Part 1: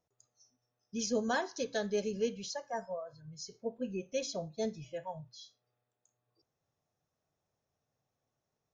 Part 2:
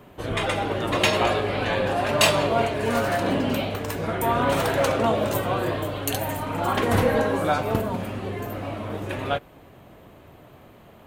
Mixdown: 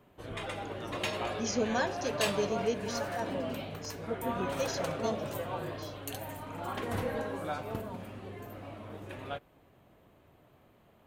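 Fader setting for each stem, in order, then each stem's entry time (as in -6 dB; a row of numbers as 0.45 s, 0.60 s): +1.0 dB, -13.5 dB; 0.45 s, 0.00 s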